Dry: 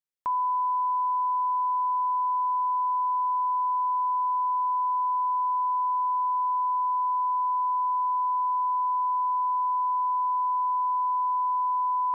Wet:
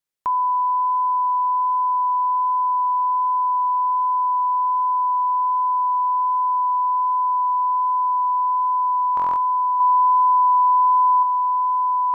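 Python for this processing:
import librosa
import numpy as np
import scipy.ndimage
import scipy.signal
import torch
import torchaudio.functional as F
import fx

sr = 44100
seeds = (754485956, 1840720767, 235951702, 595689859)

y = fx.comb(x, sr, ms=2.1, depth=0.7, at=(9.8, 11.23))
y = fx.vibrato(y, sr, rate_hz=1.3, depth_cents=5.0)
y = fx.buffer_glitch(y, sr, at_s=(9.15,), block=1024, repeats=8)
y = F.gain(torch.from_numpy(y), 6.0).numpy()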